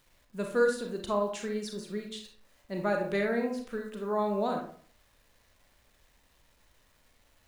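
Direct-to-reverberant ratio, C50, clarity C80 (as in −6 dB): 2.0 dB, 5.0 dB, 10.0 dB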